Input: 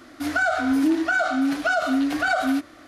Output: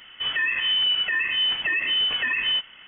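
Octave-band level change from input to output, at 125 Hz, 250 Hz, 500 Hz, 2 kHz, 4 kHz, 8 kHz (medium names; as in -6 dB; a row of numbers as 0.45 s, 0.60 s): no reading, -29.0 dB, -20.0 dB, -0.5 dB, +18.0 dB, under -40 dB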